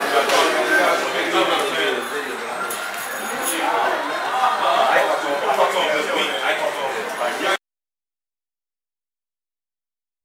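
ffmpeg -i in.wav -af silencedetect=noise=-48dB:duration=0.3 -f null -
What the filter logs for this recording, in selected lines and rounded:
silence_start: 7.58
silence_end: 10.25 | silence_duration: 2.67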